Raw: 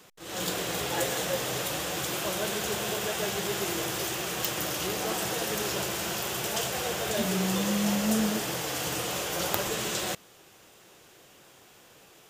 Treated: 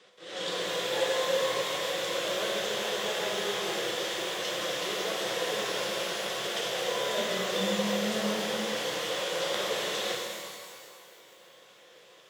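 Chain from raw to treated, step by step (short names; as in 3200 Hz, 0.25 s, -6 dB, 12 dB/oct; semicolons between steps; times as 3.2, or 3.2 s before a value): speaker cabinet 210–7500 Hz, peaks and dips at 260 Hz -6 dB, 510 Hz +10 dB, 860 Hz -4 dB, 1900 Hz +6 dB, 3500 Hz +8 dB, 6800 Hz -6 dB; shimmer reverb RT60 2.1 s, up +12 st, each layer -8 dB, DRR -1 dB; gain -6.5 dB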